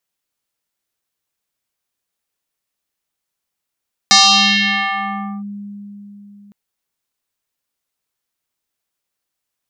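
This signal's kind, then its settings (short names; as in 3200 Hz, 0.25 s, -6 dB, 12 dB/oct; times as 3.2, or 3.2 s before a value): FM tone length 2.41 s, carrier 203 Hz, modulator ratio 4.85, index 6, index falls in 1.32 s linear, decay 4.05 s, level -5 dB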